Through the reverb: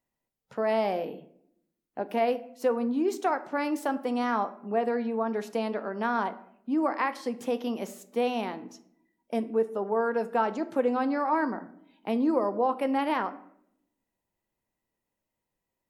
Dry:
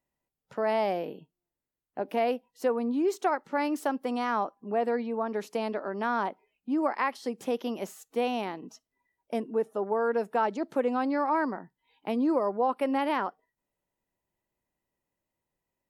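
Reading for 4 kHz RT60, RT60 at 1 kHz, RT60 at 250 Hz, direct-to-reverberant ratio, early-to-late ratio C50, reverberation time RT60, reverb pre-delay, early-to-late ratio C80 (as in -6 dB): 0.40 s, 0.60 s, 1.0 s, 9.5 dB, 16.0 dB, 0.70 s, 4 ms, 19.0 dB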